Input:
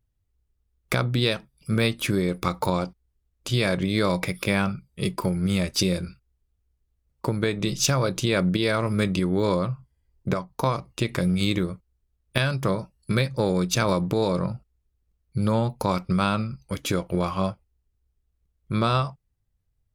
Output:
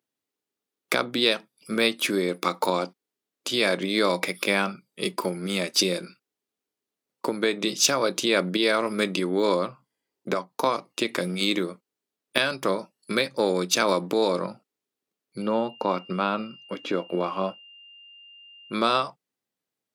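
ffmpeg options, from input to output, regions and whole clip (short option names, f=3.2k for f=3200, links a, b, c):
-filter_complex "[0:a]asettb=1/sr,asplit=3[a][b][c];[a]atrim=end=15.424[d];[b]atrim=start=15.42:end=18.73,asetpts=PTS-STARTPTS,afade=t=in:d=0.004:c=qsin,afade=t=out:st=3.306:d=0.004:c=qsin,acrossover=split=5300[e][f];[f]acompressor=threshold=-57dB:ratio=4:attack=1:release=60[g];[e][g]amix=inputs=2:normalize=0,highshelf=f=2.3k:g=-10.5,aeval=exprs='val(0)+0.00316*sin(2*PI*2800*n/s)':c=same[h];[c]atrim=start=18.726[i];[d][h]acrossfade=d=0.004:c1=hsin:c2=qsin[j];[j][i]acrossfade=d=0.004:c1=qsin:c2=hsin,highpass=f=240:w=0.5412,highpass=f=240:w=1.3066,equalizer=f=3.8k:t=o:w=1.4:g=2.5,volume=1.5dB"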